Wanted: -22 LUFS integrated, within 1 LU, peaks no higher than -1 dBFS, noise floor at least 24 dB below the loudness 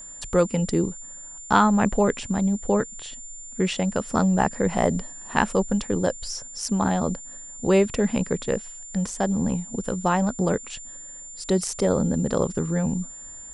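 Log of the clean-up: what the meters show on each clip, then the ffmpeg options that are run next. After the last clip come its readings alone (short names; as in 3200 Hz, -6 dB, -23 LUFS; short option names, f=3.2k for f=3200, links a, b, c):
steady tone 7200 Hz; tone level -38 dBFS; loudness -24.0 LUFS; peak -4.0 dBFS; loudness target -22.0 LUFS
-> -af "bandreject=f=7.2k:w=30"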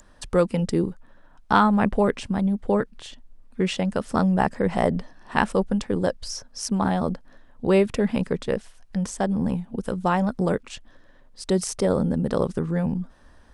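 steady tone none; loudness -24.5 LUFS; peak -4.5 dBFS; loudness target -22.0 LUFS
-> -af "volume=2.5dB"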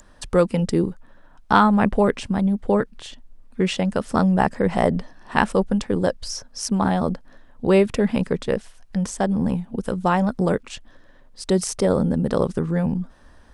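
loudness -22.0 LUFS; peak -2.0 dBFS; noise floor -49 dBFS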